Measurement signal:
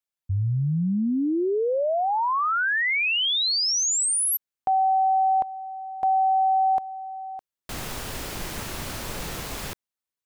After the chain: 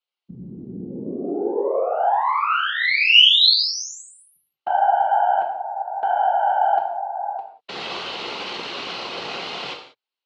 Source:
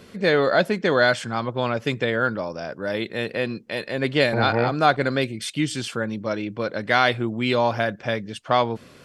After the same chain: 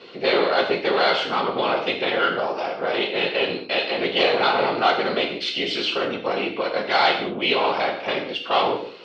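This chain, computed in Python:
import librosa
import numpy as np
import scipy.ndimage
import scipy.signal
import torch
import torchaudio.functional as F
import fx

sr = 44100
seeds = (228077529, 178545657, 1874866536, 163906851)

p1 = fx.high_shelf(x, sr, hz=3100.0, db=-11.0)
p2 = fx.over_compress(p1, sr, threshold_db=-28.0, ratio=-1.0)
p3 = p1 + (p2 * librosa.db_to_amplitude(-2.0))
p4 = fx.cheby_harmonics(p3, sr, harmonics=(5, 6), levels_db=(-40, -21), full_scale_db=-3.5)
p5 = fx.whisperise(p4, sr, seeds[0])
p6 = fx.cabinet(p5, sr, low_hz=440.0, low_slope=12, high_hz=5000.0, hz=(610.0, 1700.0, 2900.0, 4200.0), db=(-3, -7, 9, 8))
p7 = fx.rev_gated(p6, sr, seeds[1], gate_ms=220, shape='falling', drr_db=2.0)
y = p7 * librosa.db_to_amplitude(-1.0)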